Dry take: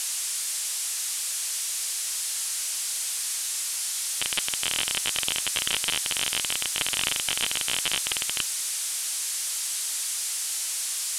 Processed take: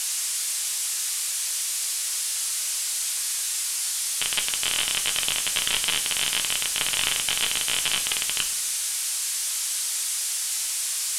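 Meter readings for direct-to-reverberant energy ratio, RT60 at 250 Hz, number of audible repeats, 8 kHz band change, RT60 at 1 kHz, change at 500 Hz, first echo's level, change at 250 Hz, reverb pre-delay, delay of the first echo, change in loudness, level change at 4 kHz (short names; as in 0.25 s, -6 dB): 4.5 dB, 0.90 s, none, +2.5 dB, 0.75 s, +0.5 dB, none, -0.5 dB, 5 ms, none, +2.5 dB, +2.5 dB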